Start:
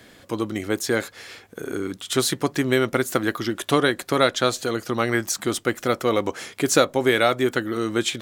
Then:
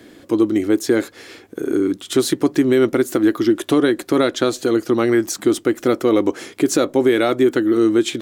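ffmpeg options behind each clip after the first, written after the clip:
ffmpeg -i in.wav -af "equalizer=frequency=320:width=1.6:gain=13.5,alimiter=limit=-6dB:level=0:latency=1:release=92" out.wav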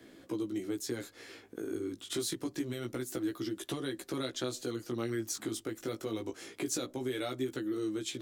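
ffmpeg -i in.wav -filter_complex "[0:a]acrossover=split=130|3200[link_01][link_02][link_03];[link_02]acompressor=threshold=-25dB:ratio=4[link_04];[link_01][link_04][link_03]amix=inputs=3:normalize=0,flanger=delay=15:depth=3.3:speed=0.26,volume=-8dB" out.wav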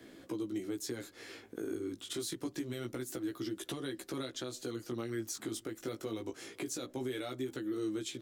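ffmpeg -i in.wav -filter_complex "[0:a]alimiter=level_in=5.5dB:limit=-24dB:level=0:latency=1:release=360,volume=-5.5dB,asplit=2[link_01][link_02];[link_02]adelay=513.1,volume=-28dB,highshelf=frequency=4000:gain=-11.5[link_03];[link_01][link_03]amix=inputs=2:normalize=0,volume=1dB" out.wav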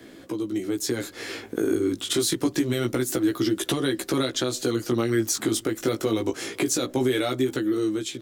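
ffmpeg -i in.wav -af "dynaudnorm=framelen=330:gausssize=5:maxgain=7dB,volume=8dB" out.wav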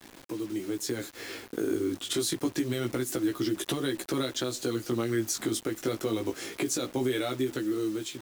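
ffmpeg -i in.wav -af "acrusher=bits=6:mix=0:aa=0.000001,volume=-5.5dB" out.wav

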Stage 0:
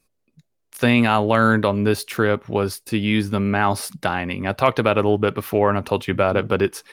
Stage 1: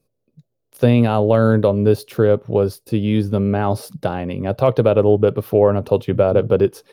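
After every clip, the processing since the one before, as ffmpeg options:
ffmpeg -i in.wav -af "equalizer=frequency=125:width_type=o:width=1:gain=10,equalizer=frequency=500:width_type=o:width=1:gain=10,equalizer=frequency=1000:width_type=o:width=1:gain=-3,equalizer=frequency=2000:width_type=o:width=1:gain=-9,equalizer=frequency=8000:width_type=o:width=1:gain=-7,volume=-2.5dB" out.wav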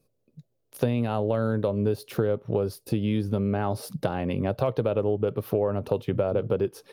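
ffmpeg -i in.wav -af "acompressor=threshold=-23dB:ratio=4" out.wav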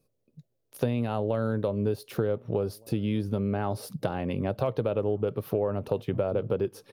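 ffmpeg -i in.wav -filter_complex "[0:a]asplit=2[link_01][link_02];[link_02]adelay=1516,volume=-28dB,highshelf=frequency=4000:gain=-34.1[link_03];[link_01][link_03]amix=inputs=2:normalize=0,volume=-2.5dB" out.wav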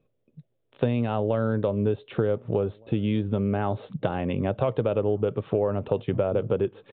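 ffmpeg -i in.wav -af "aresample=8000,aresample=44100,volume=3dB" out.wav

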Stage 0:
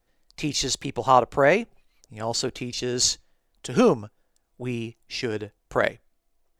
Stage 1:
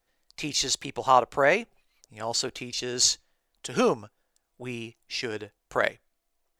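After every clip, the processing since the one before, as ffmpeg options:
ffmpeg -i in.wav -af "lowshelf=frequency=450:gain=-9" out.wav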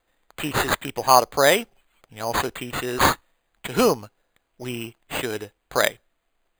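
ffmpeg -i in.wav -af "acrusher=samples=8:mix=1:aa=0.000001,volume=4.5dB" out.wav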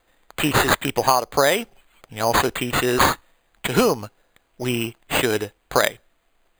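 ffmpeg -i in.wav -af "acompressor=threshold=-20dB:ratio=16,volume=7.5dB" out.wav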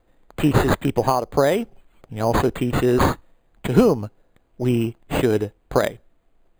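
ffmpeg -i in.wav -af "tiltshelf=frequency=760:gain=8.5,volume=-1.5dB" out.wav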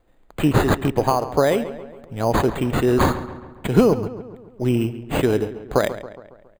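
ffmpeg -i in.wav -filter_complex "[0:a]asplit=2[link_01][link_02];[link_02]adelay=138,lowpass=frequency=3200:poles=1,volume=-13dB,asplit=2[link_03][link_04];[link_04]adelay=138,lowpass=frequency=3200:poles=1,volume=0.54,asplit=2[link_05][link_06];[link_06]adelay=138,lowpass=frequency=3200:poles=1,volume=0.54,asplit=2[link_07][link_08];[link_08]adelay=138,lowpass=frequency=3200:poles=1,volume=0.54,asplit=2[link_09][link_10];[link_10]adelay=138,lowpass=frequency=3200:poles=1,volume=0.54,asplit=2[link_11][link_12];[link_12]adelay=138,lowpass=frequency=3200:poles=1,volume=0.54[link_13];[link_01][link_03][link_05][link_07][link_09][link_11][link_13]amix=inputs=7:normalize=0" out.wav

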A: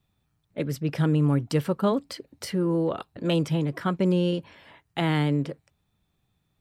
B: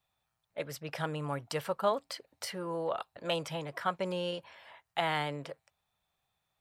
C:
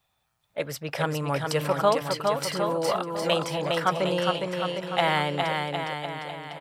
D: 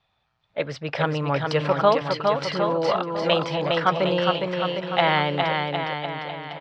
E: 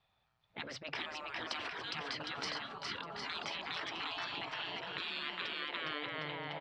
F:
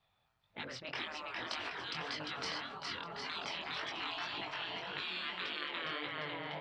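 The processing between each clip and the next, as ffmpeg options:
ffmpeg -i in.wav -af "lowshelf=frequency=450:width_type=q:width=1.5:gain=-12.5,volume=-3dB" out.wav
ffmpeg -i in.wav -af "aecho=1:1:410|758.5|1055|1307|1521:0.631|0.398|0.251|0.158|0.1,volume=7.5dB" out.wav
ffmpeg -i in.wav -af "lowpass=frequency=4600:width=0.5412,lowpass=frequency=4600:width=1.3066,volume=3.5dB" out.wav
ffmpeg -i in.wav -af "afftfilt=real='re*lt(hypot(re,im),0.1)':imag='im*lt(hypot(re,im),0.1)':win_size=1024:overlap=0.75,volume=-6dB" out.wav
ffmpeg -i in.wav -af "flanger=delay=19.5:depth=5:speed=1.8,volume=3dB" out.wav

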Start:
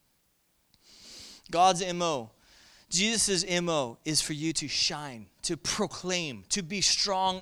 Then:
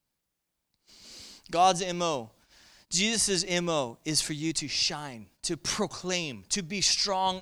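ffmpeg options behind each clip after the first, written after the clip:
ffmpeg -i in.wav -af "agate=range=-12dB:threshold=-58dB:ratio=16:detection=peak" out.wav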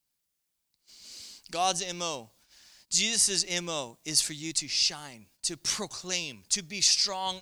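ffmpeg -i in.wav -af "highshelf=frequency=2400:gain=11.5,volume=-7.5dB" out.wav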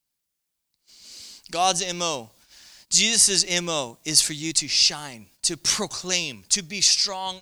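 ffmpeg -i in.wav -af "dynaudnorm=framelen=600:gausssize=5:maxgain=11.5dB" out.wav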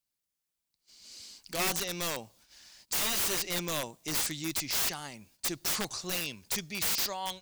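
ffmpeg -i in.wav -af "aeval=exprs='(mod(7.94*val(0)+1,2)-1)/7.94':channel_layout=same,volume=-6dB" out.wav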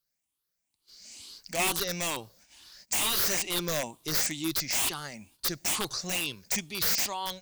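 ffmpeg -i in.wav -af "afftfilt=real='re*pow(10,9/40*sin(2*PI*(0.6*log(max(b,1)*sr/1024/100)/log(2)-(2.2)*(pts-256)/sr)))':imag='im*pow(10,9/40*sin(2*PI*(0.6*log(max(b,1)*sr/1024/100)/log(2)-(2.2)*(pts-256)/sr)))':win_size=1024:overlap=0.75,volume=1.5dB" out.wav

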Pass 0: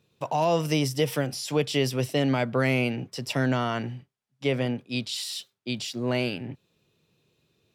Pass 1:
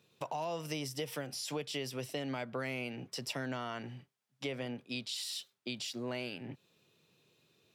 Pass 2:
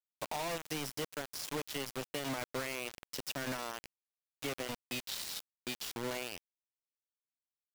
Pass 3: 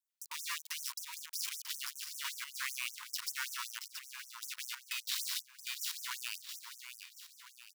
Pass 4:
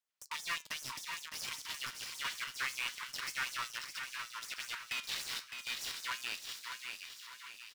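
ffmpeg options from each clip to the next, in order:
ffmpeg -i in.wav -af "highpass=110,lowshelf=frequency=460:gain=-5,acompressor=threshold=-41dB:ratio=3,volume=1.5dB" out.wav
ffmpeg -i in.wav -af "acrusher=bits=5:mix=0:aa=0.000001,volume=-1.5dB" out.wav
ffmpeg -i in.wav -af "alimiter=level_in=5dB:limit=-24dB:level=0:latency=1:release=98,volume=-5dB,aecho=1:1:676|1352|2028|2704|3380:0.376|0.177|0.083|0.039|0.0183,afftfilt=real='re*gte(b*sr/1024,880*pow(5700/880,0.5+0.5*sin(2*PI*5.2*pts/sr)))':imag='im*gte(b*sr/1024,880*pow(5700/880,0.5+0.5*sin(2*PI*5.2*pts/sr)))':win_size=1024:overlap=0.75,volume=4dB" out.wav
ffmpeg -i in.wav -filter_complex "[0:a]flanger=delay=5.8:depth=9.2:regen=77:speed=0.29:shape=triangular,asplit=2[link_01][link_02];[link_02]highpass=frequency=720:poles=1,volume=10dB,asoftclip=type=tanh:threshold=-28.5dB[link_03];[link_01][link_03]amix=inputs=2:normalize=0,lowpass=frequency=2300:poles=1,volume=-6dB,asplit=2[link_04][link_05];[link_05]aecho=0:1:610|1220|1830|2440:0.422|0.16|0.0609|0.0231[link_06];[link_04][link_06]amix=inputs=2:normalize=0,volume=6dB" out.wav

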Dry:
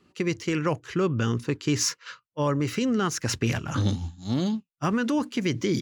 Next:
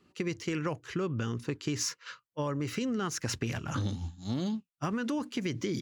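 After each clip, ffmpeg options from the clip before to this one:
ffmpeg -i in.wav -af "acompressor=threshold=-25dB:ratio=6,volume=-3.5dB" out.wav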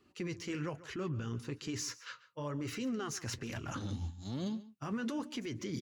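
ffmpeg -i in.wav -filter_complex "[0:a]alimiter=level_in=4dB:limit=-24dB:level=0:latency=1:release=21,volume=-4dB,flanger=delay=2.7:depth=6.8:regen=-48:speed=1.1:shape=sinusoidal,asplit=2[link_01][link_02];[link_02]adelay=139.9,volume=-17dB,highshelf=frequency=4000:gain=-3.15[link_03];[link_01][link_03]amix=inputs=2:normalize=0,volume=1.5dB" out.wav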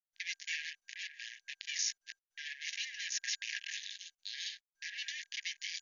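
ffmpeg -i in.wav -af "acrusher=bits=5:mix=0:aa=0.5,afftfilt=real='re*between(b*sr/4096,1600,6900)':imag='im*between(b*sr/4096,1600,6900)':win_size=4096:overlap=0.75,volume=7dB" -ar 24000 -c:a mp2 -b:a 96k out.mp2

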